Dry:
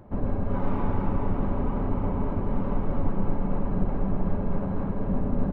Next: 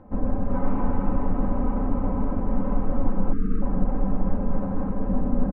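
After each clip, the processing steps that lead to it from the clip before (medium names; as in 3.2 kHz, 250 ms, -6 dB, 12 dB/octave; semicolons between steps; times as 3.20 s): low-pass 1.9 kHz 12 dB/octave; time-frequency box 3.33–3.62 s, 490–1100 Hz -29 dB; comb 3.9 ms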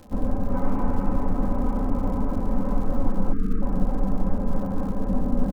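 crackle 160 per s -39 dBFS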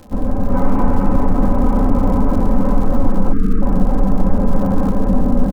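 level rider gain up to 7 dB; in parallel at +3 dB: peak limiter -14 dBFS, peak gain reduction 10.5 dB; on the sum: trim -1.5 dB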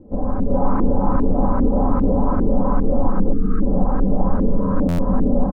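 LFO low-pass saw up 2.5 Hz 330–1600 Hz; spectral replace 4.53–5.07 s, 330–900 Hz; buffer glitch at 4.88 s, samples 512, times 8; trim -4 dB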